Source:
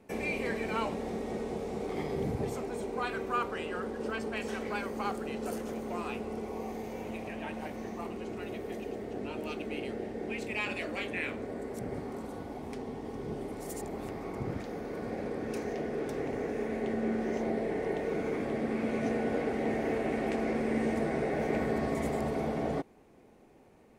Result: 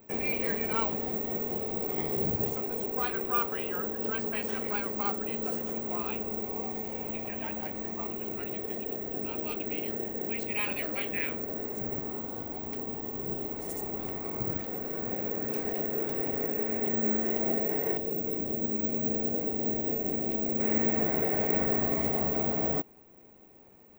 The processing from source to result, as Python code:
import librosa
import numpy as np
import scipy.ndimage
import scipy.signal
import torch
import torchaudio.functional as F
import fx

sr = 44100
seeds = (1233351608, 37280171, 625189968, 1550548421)

y = fx.peak_eq(x, sr, hz=1600.0, db=-13.5, octaves=2.1, at=(17.97, 20.6))
y = (np.kron(y[::2], np.eye(2)[0]) * 2)[:len(y)]